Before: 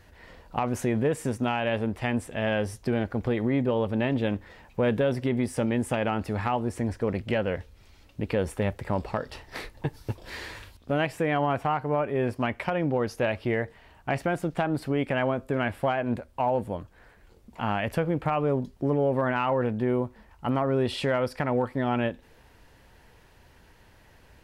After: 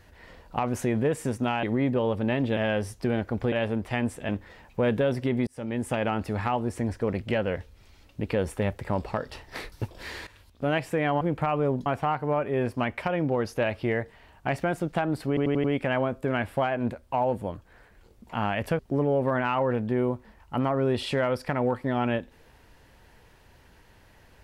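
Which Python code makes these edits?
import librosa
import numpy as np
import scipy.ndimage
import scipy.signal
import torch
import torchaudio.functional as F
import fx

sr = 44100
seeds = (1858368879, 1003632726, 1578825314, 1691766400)

y = fx.edit(x, sr, fx.swap(start_s=1.63, length_s=0.77, other_s=3.35, other_length_s=0.94),
    fx.fade_in_span(start_s=5.47, length_s=0.62, curve='qsin'),
    fx.cut(start_s=9.72, length_s=0.27),
    fx.fade_in_from(start_s=10.54, length_s=0.41, floor_db=-15.0),
    fx.stutter(start_s=14.9, slice_s=0.09, count=5),
    fx.move(start_s=18.05, length_s=0.65, to_s=11.48), tone=tone)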